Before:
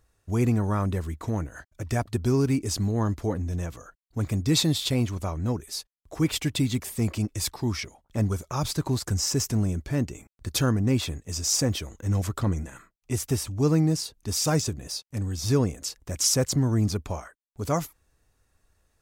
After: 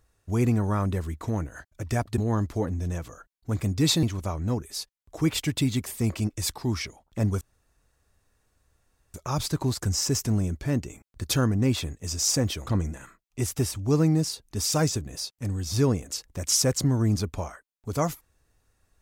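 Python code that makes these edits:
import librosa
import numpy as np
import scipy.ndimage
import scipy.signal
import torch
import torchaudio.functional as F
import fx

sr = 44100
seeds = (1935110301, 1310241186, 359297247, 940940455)

y = fx.edit(x, sr, fx.cut(start_s=2.18, length_s=0.68),
    fx.cut(start_s=4.71, length_s=0.3),
    fx.insert_room_tone(at_s=8.39, length_s=1.73),
    fx.cut(start_s=11.92, length_s=0.47), tone=tone)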